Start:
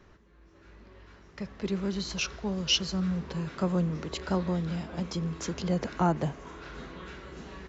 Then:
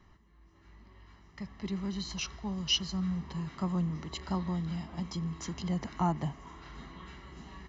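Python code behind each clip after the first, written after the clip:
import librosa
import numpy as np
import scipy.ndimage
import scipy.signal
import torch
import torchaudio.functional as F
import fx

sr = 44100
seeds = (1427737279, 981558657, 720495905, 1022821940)

y = x + 0.64 * np.pad(x, (int(1.0 * sr / 1000.0), 0))[:len(x)]
y = y * librosa.db_to_amplitude(-6.0)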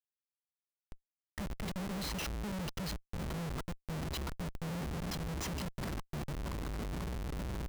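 y = fx.over_compress(x, sr, threshold_db=-38.0, ratio=-0.5)
y = fx.schmitt(y, sr, flips_db=-40.5)
y = y * librosa.db_to_amplitude(3.0)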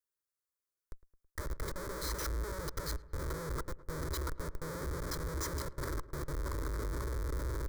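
y = fx.fixed_phaser(x, sr, hz=750.0, stages=6)
y = fx.echo_filtered(y, sr, ms=108, feedback_pct=64, hz=1800.0, wet_db=-18)
y = y * librosa.db_to_amplitude(4.5)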